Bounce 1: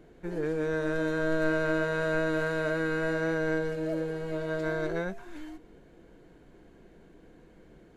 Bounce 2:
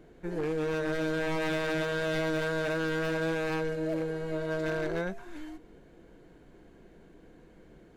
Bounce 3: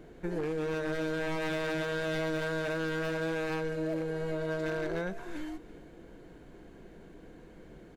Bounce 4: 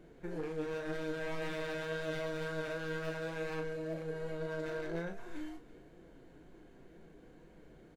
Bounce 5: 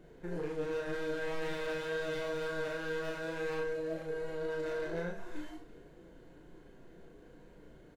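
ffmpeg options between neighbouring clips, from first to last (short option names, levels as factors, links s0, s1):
-af "aeval=exprs='0.0562*(abs(mod(val(0)/0.0562+3,4)-2)-1)':c=same"
-af "acompressor=threshold=0.02:ratio=6,aecho=1:1:334:0.119,volume=1.5"
-filter_complex "[0:a]flanger=delay=5.2:depth=3.2:regen=66:speed=2:shape=triangular,asplit=2[s0][s1];[s1]adelay=36,volume=0.422[s2];[s0][s2]amix=inputs=2:normalize=0,volume=0.75"
-filter_complex "[0:a]bandreject=f=2300:w=20,asplit=2[s0][s1];[s1]aecho=0:1:34|80:0.596|0.316[s2];[s0][s2]amix=inputs=2:normalize=0"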